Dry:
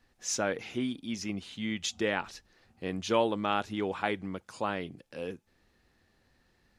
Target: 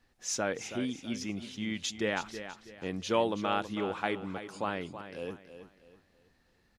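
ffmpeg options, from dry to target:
ffmpeg -i in.wav -af "aecho=1:1:325|650|975|1300:0.282|0.0958|0.0326|0.0111,volume=-1.5dB" out.wav

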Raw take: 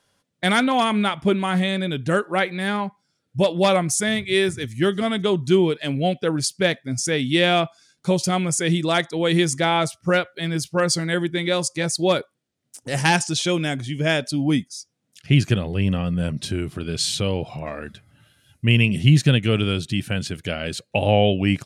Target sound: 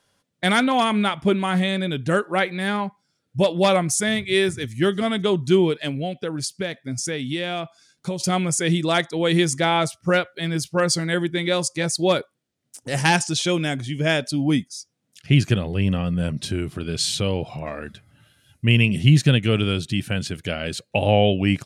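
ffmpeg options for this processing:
ffmpeg -i in.wav -filter_complex "[0:a]asettb=1/sr,asplit=3[link_01][link_02][link_03];[link_01]atrim=end=5.884[link_04];[link_02]atrim=start=5.88:end=8.2,asetpts=PTS-STARTPTS,afade=type=in:duration=0.004:curve=qsin,afade=type=out:start_time=2.316:duration=0.004:curve=qsin,acompressor=threshold=-24dB:ratio=6[link_05];[link_03]atrim=start=8.196[link_06];[link_04][link_05]acrossfade=duration=0.004:curve1=hsin:curve2=qsin[link_07];[link_07][link_06]acrossfade=duration=0.004:curve1=qsin:curve2=hsin" out.wav

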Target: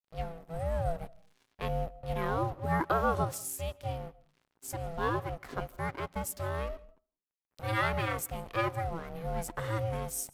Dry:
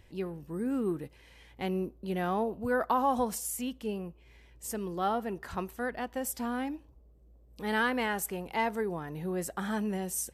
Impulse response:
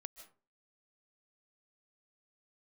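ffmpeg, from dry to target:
-filter_complex "[0:a]aeval=exprs='val(0)*sin(2*PI*330*n/s)':channel_layout=same,adynamicequalizer=threshold=0.00112:dfrequency=330:dqfactor=5.4:tfrequency=330:tqfactor=5.4:attack=5:release=100:ratio=0.375:range=2.5:mode=boostabove:tftype=bell,aeval=exprs='sgn(val(0))*max(abs(val(0))-0.00237,0)':channel_layout=same,asplit=2[link_01][link_02];[1:a]atrim=start_sample=2205,lowshelf=frequency=300:gain=9[link_03];[link_02][link_03]afir=irnorm=-1:irlink=0,volume=-7dB[link_04];[link_01][link_04]amix=inputs=2:normalize=0"

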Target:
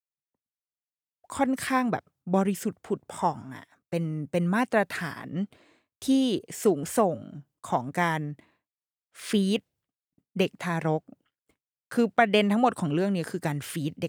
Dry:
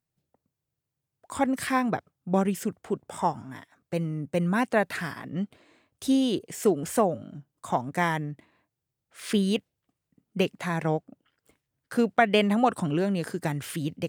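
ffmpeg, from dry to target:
ffmpeg -i in.wav -af "agate=range=-33dB:threshold=-56dB:ratio=3:detection=peak" out.wav

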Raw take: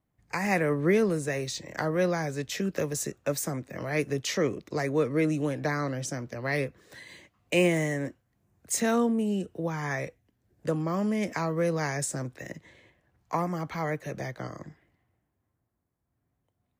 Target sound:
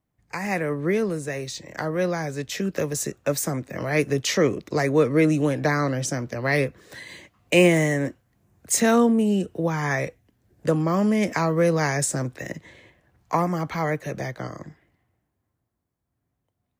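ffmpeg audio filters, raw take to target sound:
ffmpeg -i in.wav -af "dynaudnorm=framelen=530:gausssize=11:maxgain=7dB" out.wav

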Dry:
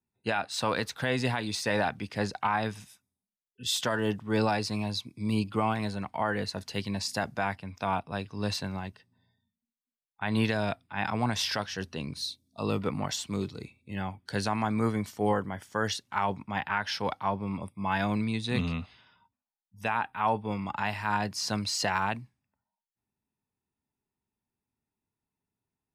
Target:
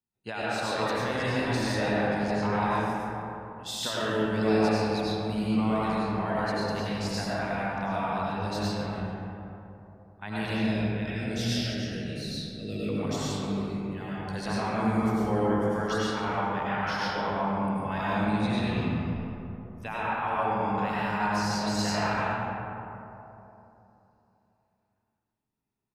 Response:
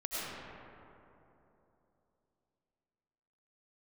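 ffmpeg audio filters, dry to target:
-filter_complex "[0:a]asettb=1/sr,asplit=3[link_01][link_02][link_03];[link_01]atrim=end=10.424[link_04];[link_02]atrim=start=10.42:end=12.89,asetpts=PTS-STARTPTS,afade=type=in:duration=0.004:curve=qsin,afade=type=out:start_time=2.466:duration=0.004:curve=qsin,asuperstop=centerf=1000:order=4:qfactor=0.73[link_05];[link_03]atrim=start=12.886[link_06];[link_04][link_05]acrossfade=duration=0.004:curve1=hsin:curve2=qsin[link_07];[link_07][link_06]acrossfade=duration=0.004:curve1=qsin:curve2=hsin,asplit=5[link_08][link_09][link_10][link_11][link_12];[link_09]adelay=137,afreqshift=-44,volume=-15dB[link_13];[link_10]adelay=274,afreqshift=-88,volume=-23dB[link_14];[link_11]adelay=411,afreqshift=-132,volume=-30.9dB[link_15];[link_12]adelay=548,afreqshift=-176,volume=-38.9dB[link_16];[link_08][link_13][link_14][link_15][link_16]amix=inputs=5:normalize=0[link_17];[1:a]atrim=start_sample=2205[link_18];[link_17][link_18]afir=irnorm=-1:irlink=0,volume=-3.5dB"

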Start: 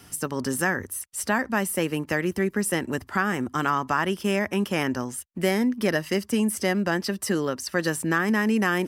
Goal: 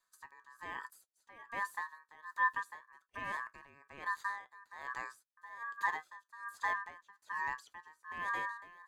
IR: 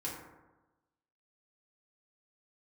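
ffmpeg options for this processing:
-filter_complex "[0:a]flanger=delay=7:depth=2.5:regen=66:speed=1.3:shape=triangular,agate=range=-20dB:threshold=-40dB:ratio=16:detection=peak,equalizer=frequency=400:width_type=o:width=0.67:gain=10,equalizer=frequency=1600:width_type=o:width=0.67:gain=-10,equalizer=frequency=6300:width_type=o:width=0.67:gain=8,aeval=exprs='val(0)*sin(2*PI*1400*n/s)':channel_layout=same,acrossover=split=2600[link_01][link_02];[link_02]acompressor=threshold=-46dB:ratio=4:attack=1:release=60[link_03];[link_01][link_03]amix=inputs=2:normalize=0,aeval=exprs='val(0)*pow(10,-22*(0.5-0.5*cos(2*PI*1.2*n/s))/20)':channel_layout=same,volume=-7dB"

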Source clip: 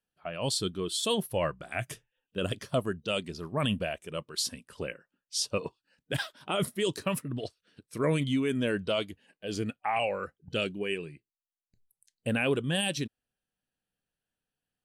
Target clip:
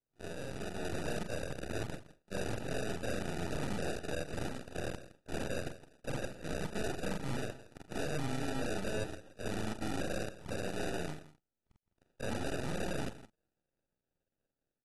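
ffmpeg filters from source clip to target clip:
ffmpeg -i in.wav -filter_complex "[0:a]afftfilt=real='re':imag='-im':win_size=4096:overlap=0.75,lowpass=7900,acompressor=threshold=-36dB:ratio=12,aeval=exprs='0.0141*(abs(mod(val(0)/0.0141+3,4)-2)-1)':channel_layout=same,dynaudnorm=framelen=610:gausssize=3:maxgain=6dB,acrusher=samples=41:mix=1:aa=0.000001,aeval=exprs='max(val(0),0)':channel_layout=same,asplit=2[link_01][link_02];[link_02]aecho=0:1:165:0.168[link_03];[link_01][link_03]amix=inputs=2:normalize=0,volume=4dB" -ar 32000 -c:a aac -b:a 32k out.aac

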